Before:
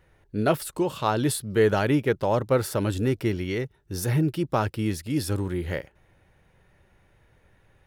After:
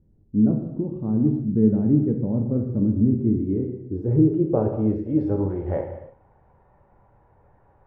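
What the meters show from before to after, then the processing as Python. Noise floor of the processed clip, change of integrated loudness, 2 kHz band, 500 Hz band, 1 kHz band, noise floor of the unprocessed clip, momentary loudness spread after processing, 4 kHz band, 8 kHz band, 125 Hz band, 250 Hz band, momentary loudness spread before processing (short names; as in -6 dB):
-59 dBFS, +3.5 dB, under -20 dB, -1.5 dB, -11.0 dB, -63 dBFS, 9 LU, under -35 dB, under -40 dB, +3.5 dB, +7.5 dB, 8 LU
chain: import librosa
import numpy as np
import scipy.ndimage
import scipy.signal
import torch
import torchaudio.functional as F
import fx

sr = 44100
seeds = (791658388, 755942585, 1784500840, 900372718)

y = fx.filter_sweep_lowpass(x, sr, from_hz=240.0, to_hz=910.0, start_s=3.11, end_s=6.1, q=2.7)
y = fx.rev_gated(y, sr, seeds[0], gate_ms=350, shape='falling', drr_db=2.0)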